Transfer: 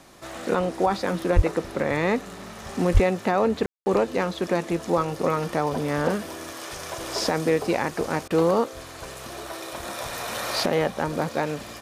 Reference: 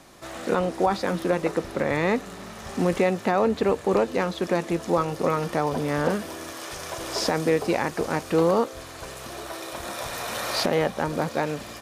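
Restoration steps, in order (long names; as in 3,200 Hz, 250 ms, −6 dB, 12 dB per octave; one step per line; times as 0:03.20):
0:01.35–0:01.47: high-pass filter 140 Hz 24 dB per octave
0:02.93–0:03.05: high-pass filter 140 Hz 24 dB per octave
ambience match 0:03.66–0:03.86
repair the gap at 0:08.28, 23 ms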